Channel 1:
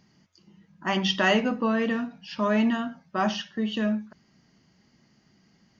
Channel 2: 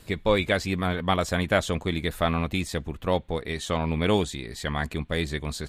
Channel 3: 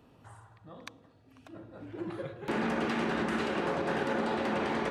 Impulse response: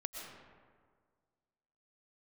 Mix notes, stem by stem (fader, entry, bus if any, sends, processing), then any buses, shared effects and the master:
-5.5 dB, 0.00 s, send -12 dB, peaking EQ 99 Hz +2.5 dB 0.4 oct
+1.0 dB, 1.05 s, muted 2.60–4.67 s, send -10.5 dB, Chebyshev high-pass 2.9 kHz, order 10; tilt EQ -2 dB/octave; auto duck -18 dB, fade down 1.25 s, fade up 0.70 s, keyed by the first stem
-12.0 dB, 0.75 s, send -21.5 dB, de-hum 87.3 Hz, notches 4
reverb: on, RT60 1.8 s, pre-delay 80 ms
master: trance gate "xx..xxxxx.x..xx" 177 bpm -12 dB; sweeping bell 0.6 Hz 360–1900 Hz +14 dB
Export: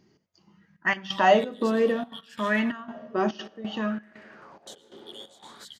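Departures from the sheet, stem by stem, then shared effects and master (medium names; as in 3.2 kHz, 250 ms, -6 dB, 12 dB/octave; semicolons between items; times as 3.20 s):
stem 2: missing tilt EQ -2 dB/octave; stem 3 -12.0 dB -> -23.5 dB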